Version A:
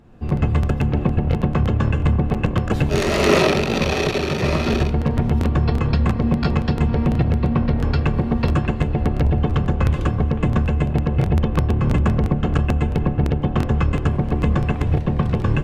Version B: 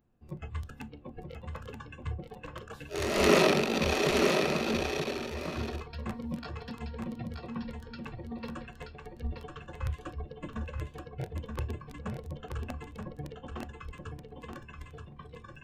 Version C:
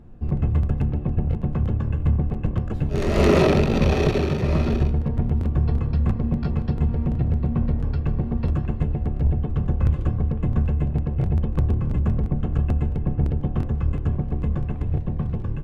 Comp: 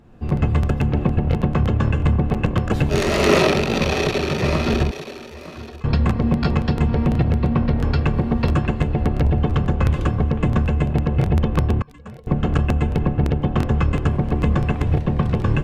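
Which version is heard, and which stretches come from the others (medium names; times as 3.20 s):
A
4.91–5.84 s: from B
11.82–12.27 s: from B
not used: C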